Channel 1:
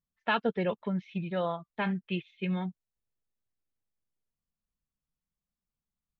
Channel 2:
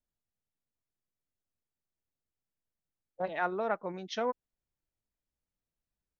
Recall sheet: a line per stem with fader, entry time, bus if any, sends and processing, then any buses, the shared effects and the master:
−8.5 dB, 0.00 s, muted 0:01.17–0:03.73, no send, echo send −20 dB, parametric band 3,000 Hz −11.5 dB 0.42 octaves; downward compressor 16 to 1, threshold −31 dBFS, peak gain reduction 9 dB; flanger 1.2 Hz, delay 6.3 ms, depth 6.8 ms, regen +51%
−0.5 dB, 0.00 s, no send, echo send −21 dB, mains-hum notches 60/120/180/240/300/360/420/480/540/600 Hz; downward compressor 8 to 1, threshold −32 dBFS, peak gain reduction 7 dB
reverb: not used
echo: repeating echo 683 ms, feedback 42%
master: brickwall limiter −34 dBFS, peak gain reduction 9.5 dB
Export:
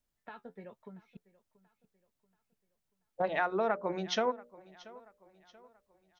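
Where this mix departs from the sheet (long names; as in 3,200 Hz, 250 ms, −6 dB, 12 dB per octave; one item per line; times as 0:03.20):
stem 2 −0.5 dB → +6.0 dB
master: missing brickwall limiter −34 dBFS, peak gain reduction 9.5 dB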